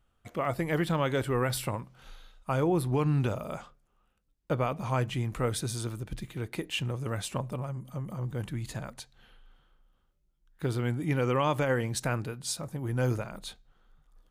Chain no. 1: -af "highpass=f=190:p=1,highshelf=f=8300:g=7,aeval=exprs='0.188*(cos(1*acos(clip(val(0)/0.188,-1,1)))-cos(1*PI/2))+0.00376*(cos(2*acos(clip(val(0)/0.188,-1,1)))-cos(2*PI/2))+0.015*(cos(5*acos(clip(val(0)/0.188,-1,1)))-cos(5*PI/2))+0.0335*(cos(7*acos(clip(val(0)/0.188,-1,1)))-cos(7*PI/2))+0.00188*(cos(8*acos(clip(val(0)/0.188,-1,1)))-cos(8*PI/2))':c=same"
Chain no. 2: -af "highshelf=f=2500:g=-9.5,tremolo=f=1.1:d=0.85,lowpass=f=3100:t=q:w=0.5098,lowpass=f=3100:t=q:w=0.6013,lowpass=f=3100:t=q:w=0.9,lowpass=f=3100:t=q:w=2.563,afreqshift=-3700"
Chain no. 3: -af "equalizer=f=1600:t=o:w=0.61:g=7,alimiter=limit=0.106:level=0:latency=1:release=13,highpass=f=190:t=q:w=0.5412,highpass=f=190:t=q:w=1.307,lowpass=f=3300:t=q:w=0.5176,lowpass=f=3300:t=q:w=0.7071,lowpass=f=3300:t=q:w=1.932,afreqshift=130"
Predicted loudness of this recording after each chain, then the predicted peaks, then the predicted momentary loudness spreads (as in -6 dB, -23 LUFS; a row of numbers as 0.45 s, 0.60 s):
-33.5 LUFS, -31.5 LUFS, -34.0 LUFS; -15.5 dBFS, -15.5 dBFS, -18.0 dBFS; 19 LU, 18 LU, 13 LU